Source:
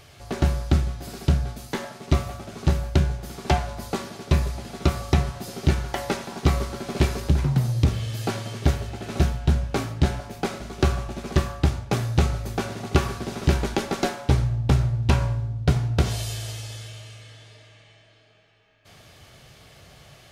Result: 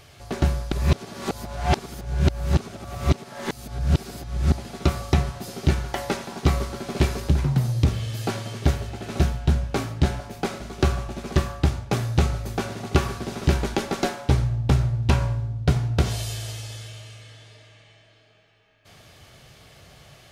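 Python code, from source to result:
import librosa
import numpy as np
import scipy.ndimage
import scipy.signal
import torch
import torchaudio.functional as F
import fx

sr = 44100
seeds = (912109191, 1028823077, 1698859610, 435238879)

y = fx.edit(x, sr, fx.reverse_span(start_s=0.72, length_s=3.8), tone=tone)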